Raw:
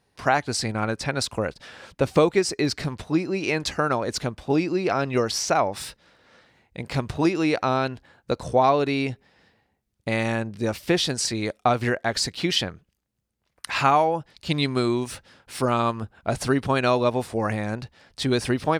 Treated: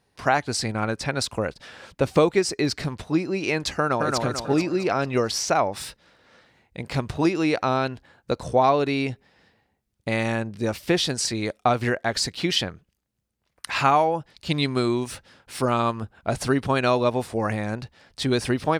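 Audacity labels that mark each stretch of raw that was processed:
3.770000	4.180000	delay throw 220 ms, feedback 45%, level −2.5 dB

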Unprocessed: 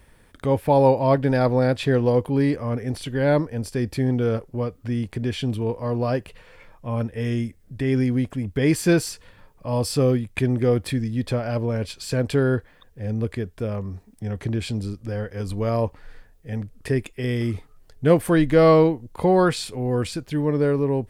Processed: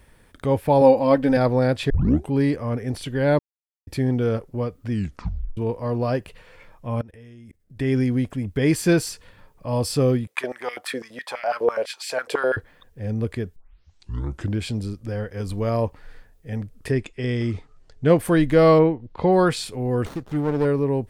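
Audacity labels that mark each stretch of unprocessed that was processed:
0.810000	1.370000	comb filter 3.9 ms
1.900000	1.900000	tape start 0.41 s
3.390000	3.870000	silence
4.910000	4.910000	tape stop 0.66 s
7.010000	7.790000	output level in coarse steps of 22 dB
10.270000	12.570000	high-pass on a step sequencer 12 Hz 470–2,100 Hz
13.560000	13.560000	tape start 1.05 s
15.430000	15.860000	centre clipping without the shift under −51.5 dBFS
16.910000	18.190000	low-pass filter 7,600 Hz 24 dB per octave
18.780000	19.310000	low-pass filter 2,500 Hz → 6,300 Hz 24 dB per octave
20.050000	20.650000	windowed peak hold over 17 samples

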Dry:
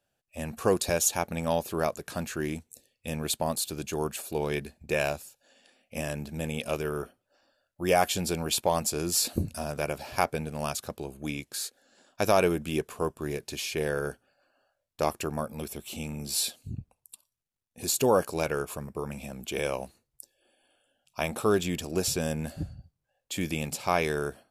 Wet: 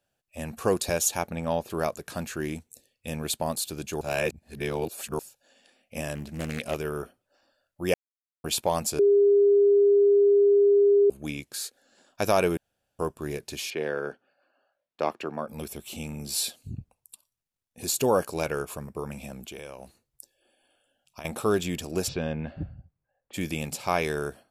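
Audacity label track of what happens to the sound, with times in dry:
1.300000	1.700000	high-shelf EQ 4,600 Hz −11.5 dB
4.010000	5.190000	reverse
6.140000	6.740000	highs frequency-modulated by the lows depth 0.31 ms
7.940000	8.440000	silence
8.990000	11.100000	beep over 404 Hz −15.5 dBFS
12.570000	12.990000	fill with room tone
13.700000	15.480000	three-way crossover with the lows and the highs turned down lows −22 dB, under 170 Hz, highs −22 dB, over 4,300 Hz
19.390000	21.250000	downward compressor, threshold −37 dBFS
22.070000	23.330000	low-pass filter 4,000 Hz → 1,800 Hz 24 dB per octave

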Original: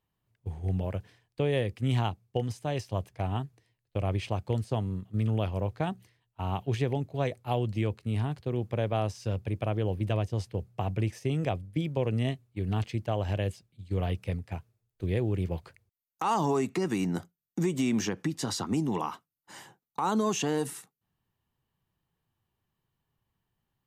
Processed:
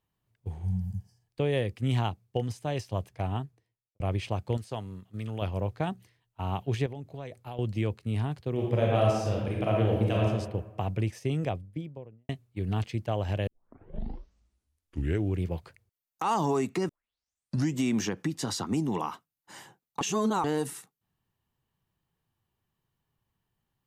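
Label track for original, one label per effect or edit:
0.620000	1.250000	healed spectral selection 230–4,500 Hz
3.260000	4.000000	fade out and dull
4.570000	5.420000	low-shelf EQ 490 Hz −9 dB
6.860000	7.590000	downward compressor 4 to 1, threshold −37 dBFS
8.520000	10.270000	thrown reverb, RT60 1.1 s, DRR −3 dB
11.290000	12.290000	fade out and dull
13.470000	13.470000	tape start 1.98 s
16.890000	16.890000	tape start 0.92 s
20.010000	20.440000	reverse

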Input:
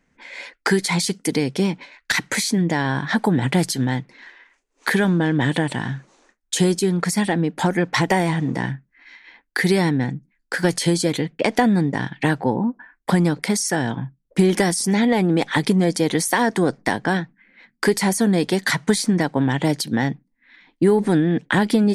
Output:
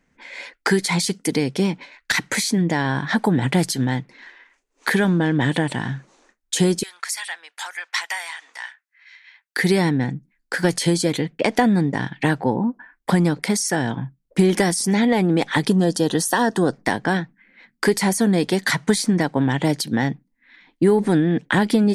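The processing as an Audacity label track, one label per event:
6.830000	9.570000	Bessel high-pass filter 1,600 Hz, order 4
15.670000	16.730000	Butterworth band-reject 2,200 Hz, Q 3.2

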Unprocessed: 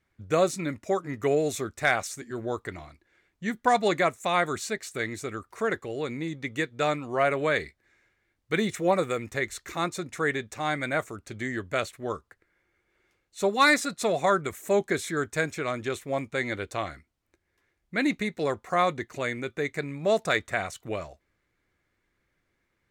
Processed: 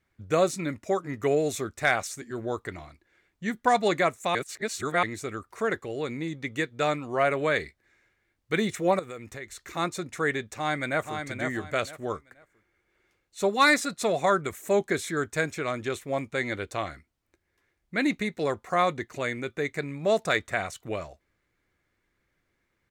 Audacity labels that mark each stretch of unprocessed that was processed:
4.350000	5.030000	reverse
8.990000	9.750000	downward compressor 2.5 to 1, threshold −40 dBFS
10.550000	11.190000	delay throw 480 ms, feedback 25%, level −6 dB

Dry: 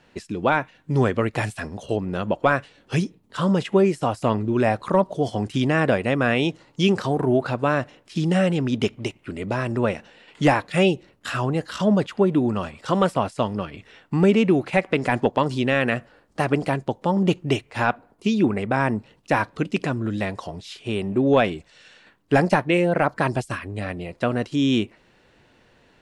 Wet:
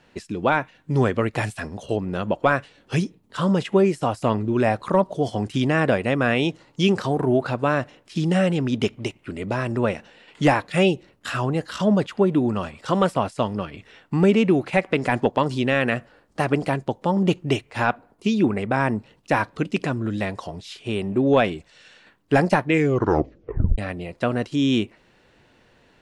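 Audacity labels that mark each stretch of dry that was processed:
22.660000	22.660000	tape stop 1.12 s

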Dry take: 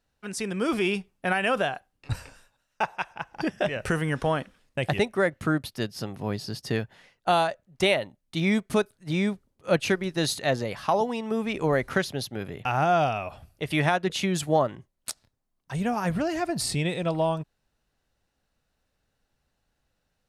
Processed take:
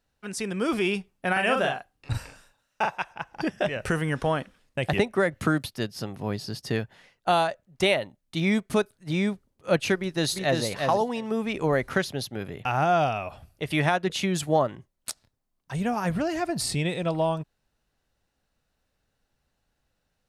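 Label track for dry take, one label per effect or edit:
1.320000	2.980000	double-tracking delay 43 ms −3.5 dB
4.930000	5.660000	multiband upward and downward compressor depth 100%
9.980000	10.620000	delay throw 350 ms, feedback 10%, level −4 dB

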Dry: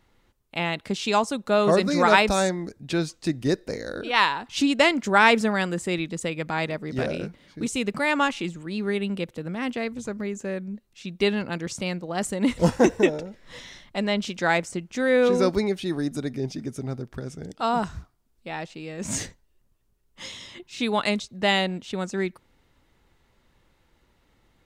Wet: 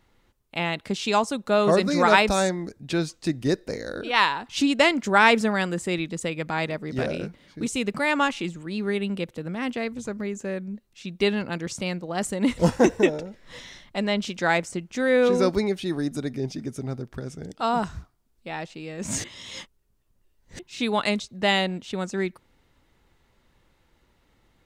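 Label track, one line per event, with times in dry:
19.240000	20.590000	reverse

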